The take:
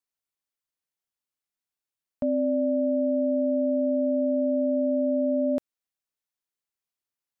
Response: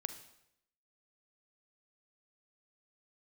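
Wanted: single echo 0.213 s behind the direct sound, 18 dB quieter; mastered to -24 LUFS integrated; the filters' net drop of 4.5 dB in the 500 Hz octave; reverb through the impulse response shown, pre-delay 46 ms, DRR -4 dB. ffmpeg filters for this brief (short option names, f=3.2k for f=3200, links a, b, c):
-filter_complex "[0:a]equalizer=f=500:t=o:g=-5.5,aecho=1:1:213:0.126,asplit=2[a][b];[1:a]atrim=start_sample=2205,adelay=46[c];[b][c]afir=irnorm=-1:irlink=0,volume=5dB[d];[a][d]amix=inputs=2:normalize=0,volume=-4.5dB"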